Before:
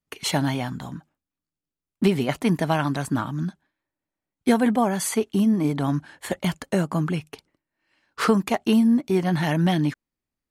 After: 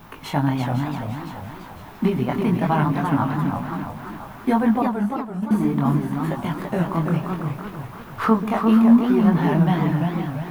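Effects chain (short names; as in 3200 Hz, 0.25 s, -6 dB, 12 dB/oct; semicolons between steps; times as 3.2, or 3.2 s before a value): added noise pink -43 dBFS; bell 3700 Hz +5 dB 0.41 oct; split-band echo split 640 Hz, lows 0.135 s, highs 0.506 s, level -9.5 dB; chorus 0.64 Hz, delay 18 ms, depth 6 ms; graphic EQ 125/250/500/1000/4000/8000 Hz +4/+4/-3/+9/-9/-11 dB; 4.82–5.51 gate -15 dBFS, range -18 dB; warbling echo 0.34 s, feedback 43%, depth 215 cents, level -5 dB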